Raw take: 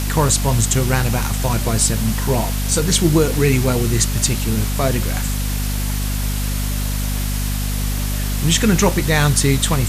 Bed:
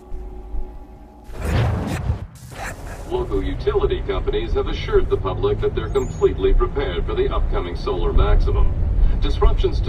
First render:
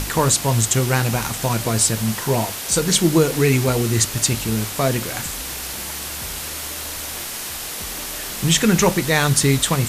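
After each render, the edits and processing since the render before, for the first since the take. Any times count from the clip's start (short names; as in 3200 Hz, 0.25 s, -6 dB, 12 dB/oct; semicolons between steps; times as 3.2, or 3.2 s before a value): notches 50/100/150/200/250 Hz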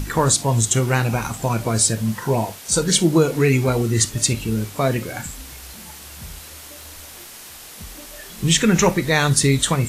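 noise print and reduce 10 dB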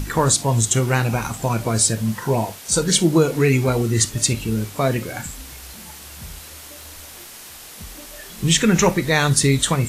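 nothing audible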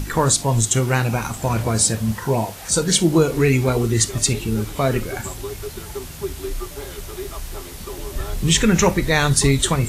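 add bed -11.5 dB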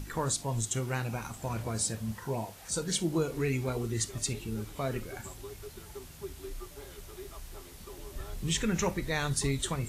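gain -14 dB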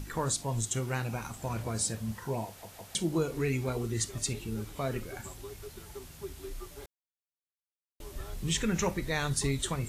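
2.47 stutter in place 0.16 s, 3 plays; 6.86–8 mute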